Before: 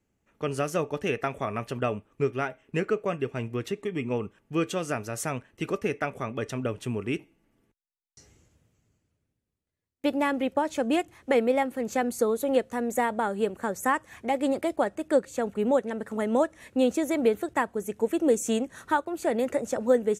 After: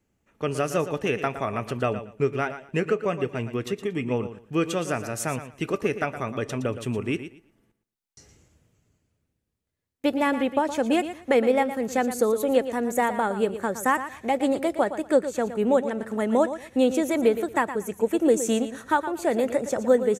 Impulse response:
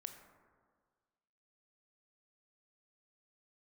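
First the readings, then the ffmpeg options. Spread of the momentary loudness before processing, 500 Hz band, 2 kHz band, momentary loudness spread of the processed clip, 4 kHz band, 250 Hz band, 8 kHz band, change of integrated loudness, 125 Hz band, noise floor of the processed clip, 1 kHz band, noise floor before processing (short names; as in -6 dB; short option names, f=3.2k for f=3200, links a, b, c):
7 LU, +3.0 dB, +3.0 dB, 7 LU, +3.0 dB, +3.0 dB, +3.0 dB, +3.0 dB, +2.5 dB, -79 dBFS, +3.0 dB, -84 dBFS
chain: -af "aecho=1:1:116|232|348:0.266|0.0532|0.0106,volume=2.5dB"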